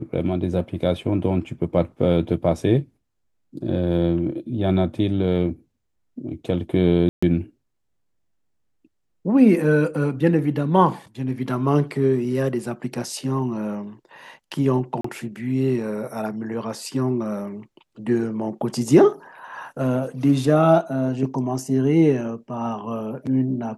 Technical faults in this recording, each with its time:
7.09–7.22 gap 0.135 s
15.01–15.04 gap 34 ms

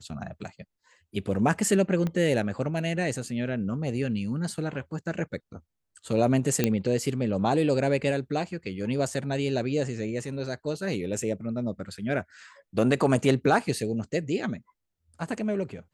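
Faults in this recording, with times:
2.07 pop -18 dBFS
6.64 pop -8 dBFS

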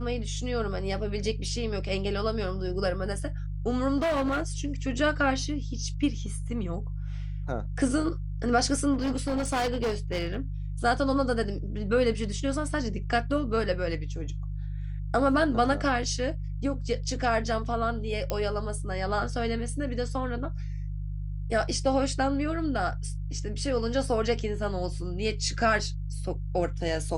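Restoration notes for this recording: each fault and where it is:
hum 50 Hz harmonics 3 -33 dBFS
3.97–4.5 clipped -23.5 dBFS
8.93–10.4 clipped -24 dBFS
18.3 pop -14 dBFS

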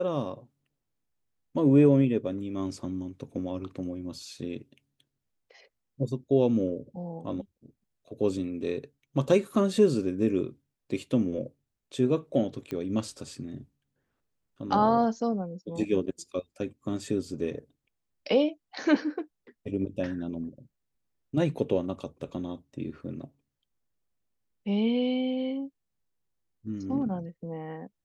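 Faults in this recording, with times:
12.71 pop -22 dBFS

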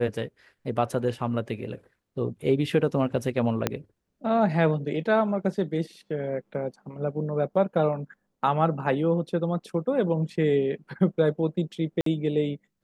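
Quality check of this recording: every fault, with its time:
3.67 pop -8 dBFS
12.01–12.06 gap 53 ms

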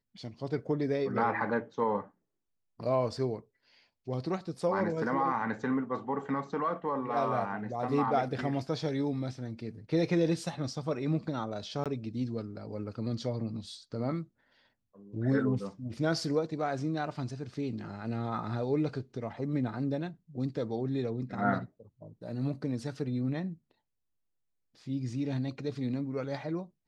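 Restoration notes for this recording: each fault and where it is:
11.84–11.86 gap 17 ms

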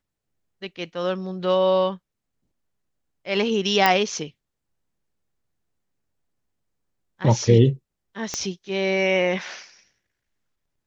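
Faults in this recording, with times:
3.86 pop -3 dBFS
8.34 pop -12 dBFS

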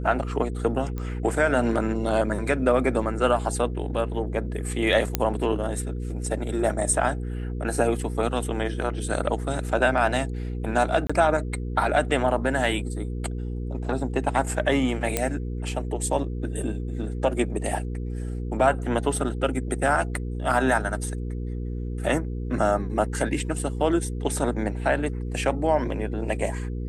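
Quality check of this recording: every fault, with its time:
hum 60 Hz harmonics 8 -30 dBFS
0.98 pop -20 dBFS
5.15 pop -5 dBFS
11.07–11.1 gap 25 ms
15.17 pop -7 dBFS

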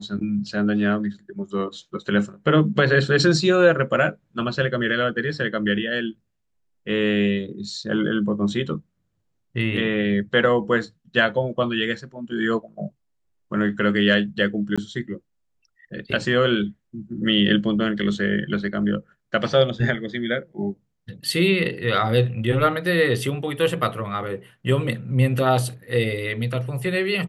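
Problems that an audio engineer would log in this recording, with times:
14.76–14.78 gap 16 ms

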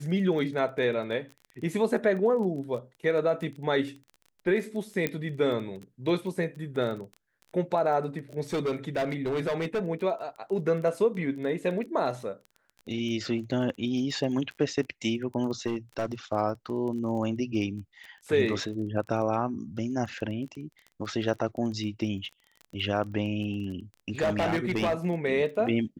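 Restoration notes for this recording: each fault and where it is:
crackle 18/s -36 dBFS
5.07 pop -13 dBFS
8.53–9.86 clipped -24.5 dBFS
15.67–16.06 clipped -24.5 dBFS
24.08–24.95 clipped -22 dBFS

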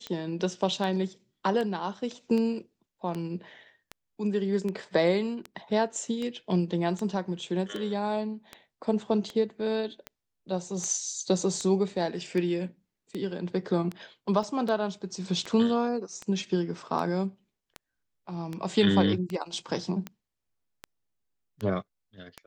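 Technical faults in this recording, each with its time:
tick 78 rpm -21 dBFS
14.43 gap 2.3 ms

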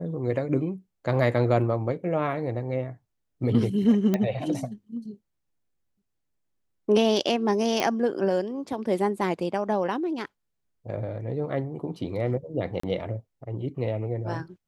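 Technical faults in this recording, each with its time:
4.14 pop -12 dBFS
7.8 pop
12.8–12.83 gap 34 ms

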